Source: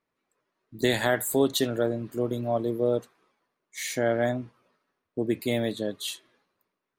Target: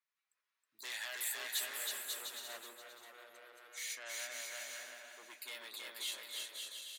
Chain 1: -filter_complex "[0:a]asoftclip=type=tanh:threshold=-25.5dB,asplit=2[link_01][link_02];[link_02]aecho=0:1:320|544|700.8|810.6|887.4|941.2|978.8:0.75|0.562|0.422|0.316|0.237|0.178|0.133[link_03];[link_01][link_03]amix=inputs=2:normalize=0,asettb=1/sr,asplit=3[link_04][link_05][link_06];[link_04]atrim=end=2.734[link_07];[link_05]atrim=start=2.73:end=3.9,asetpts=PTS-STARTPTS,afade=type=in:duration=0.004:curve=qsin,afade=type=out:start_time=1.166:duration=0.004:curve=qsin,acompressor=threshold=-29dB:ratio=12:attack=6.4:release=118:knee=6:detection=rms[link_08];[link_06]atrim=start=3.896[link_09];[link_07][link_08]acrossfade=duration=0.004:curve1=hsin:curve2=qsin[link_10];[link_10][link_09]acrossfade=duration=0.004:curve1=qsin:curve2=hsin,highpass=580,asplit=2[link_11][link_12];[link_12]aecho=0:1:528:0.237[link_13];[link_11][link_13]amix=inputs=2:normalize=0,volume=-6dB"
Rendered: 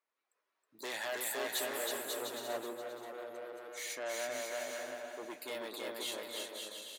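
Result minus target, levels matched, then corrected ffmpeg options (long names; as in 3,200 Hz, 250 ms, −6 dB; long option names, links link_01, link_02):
500 Hz band +14.0 dB
-filter_complex "[0:a]asoftclip=type=tanh:threshold=-25.5dB,asplit=2[link_01][link_02];[link_02]aecho=0:1:320|544|700.8|810.6|887.4|941.2|978.8:0.75|0.562|0.422|0.316|0.237|0.178|0.133[link_03];[link_01][link_03]amix=inputs=2:normalize=0,asettb=1/sr,asplit=3[link_04][link_05][link_06];[link_04]atrim=end=2.734[link_07];[link_05]atrim=start=2.73:end=3.9,asetpts=PTS-STARTPTS,afade=type=in:duration=0.004:curve=qsin,afade=type=out:start_time=1.166:duration=0.004:curve=qsin,acompressor=threshold=-29dB:ratio=12:attack=6.4:release=118:knee=6:detection=rms[link_08];[link_06]atrim=start=3.896[link_09];[link_07][link_08]acrossfade=duration=0.004:curve1=hsin:curve2=qsin[link_10];[link_10][link_09]acrossfade=duration=0.004:curve1=qsin:curve2=hsin,highpass=1700,asplit=2[link_11][link_12];[link_12]aecho=0:1:528:0.237[link_13];[link_11][link_13]amix=inputs=2:normalize=0,volume=-6dB"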